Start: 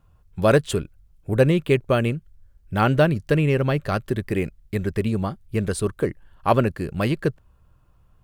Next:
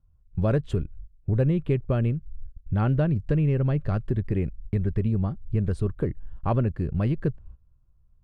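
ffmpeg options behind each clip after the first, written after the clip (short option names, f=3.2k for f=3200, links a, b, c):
-af "agate=range=-17dB:threshold=-49dB:ratio=16:detection=peak,aemphasis=mode=reproduction:type=riaa,acompressor=threshold=-23dB:ratio=2,volume=-3.5dB"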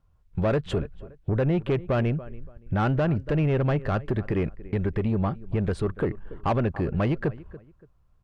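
-filter_complex "[0:a]asplit=2[a][b];[b]adelay=285,lowpass=f=2.1k:p=1,volume=-22dB,asplit=2[c][d];[d]adelay=285,lowpass=f=2.1k:p=1,volume=0.28[e];[a][c][e]amix=inputs=3:normalize=0,alimiter=limit=-17.5dB:level=0:latency=1:release=86,asplit=2[f][g];[g]highpass=f=720:p=1,volume=17dB,asoftclip=type=tanh:threshold=-17.5dB[h];[f][h]amix=inputs=2:normalize=0,lowpass=f=2.4k:p=1,volume=-6dB,volume=2dB"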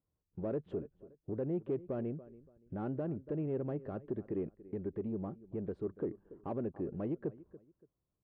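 -af "bandpass=f=330:t=q:w=1.4:csg=0,volume=-8dB"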